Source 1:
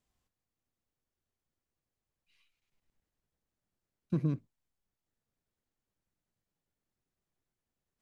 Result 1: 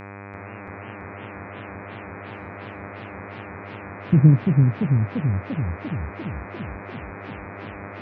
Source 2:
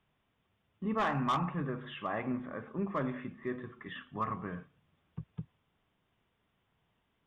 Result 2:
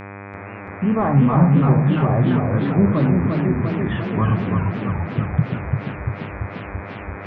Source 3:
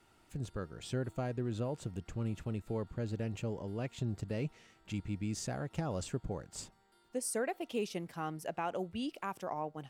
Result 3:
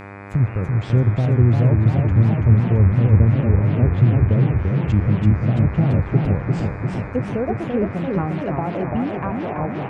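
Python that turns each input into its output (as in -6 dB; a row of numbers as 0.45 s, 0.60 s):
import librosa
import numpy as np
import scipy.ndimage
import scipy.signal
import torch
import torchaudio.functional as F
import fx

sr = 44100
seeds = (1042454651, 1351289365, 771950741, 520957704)

y = fx.env_lowpass_down(x, sr, base_hz=880.0, full_db=-34.0)
y = fx.lowpass(y, sr, hz=3700.0, slope=6)
y = fx.peak_eq(y, sr, hz=110.0, db=13.0, octaves=1.7)
y = fx.comb_fb(y, sr, f0_hz=120.0, decay_s=1.5, harmonics='all', damping=0.0, mix_pct=50)
y = y * (1.0 - 0.34 / 2.0 + 0.34 / 2.0 * np.cos(2.0 * np.pi * 2.8 * (np.arange(len(y)) / sr)))
y = fx.dmg_buzz(y, sr, base_hz=100.0, harmonics=25, level_db=-54.0, tilt_db=-3, odd_only=False)
y = fx.echo_warbled(y, sr, ms=341, feedback_pct=70, rate_hz=2.8, cents=217, wet_db=-4)
y = librosa.util.normalize(y) * 10.0 ** (-3 / 20.0)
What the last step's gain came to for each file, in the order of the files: +15.5 dB, +19.0 dB, +17.5 dB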